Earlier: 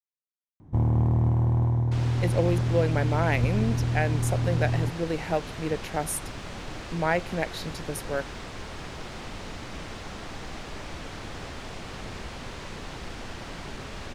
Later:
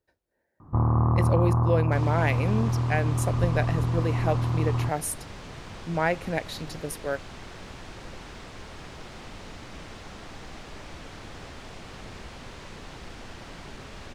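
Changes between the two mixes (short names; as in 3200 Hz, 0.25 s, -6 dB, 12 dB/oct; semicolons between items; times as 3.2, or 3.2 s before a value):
speech: entry -1.05 s; first sound: add synth low-pass 1200 Hz, resonance Q 11; second sound -4.0 dB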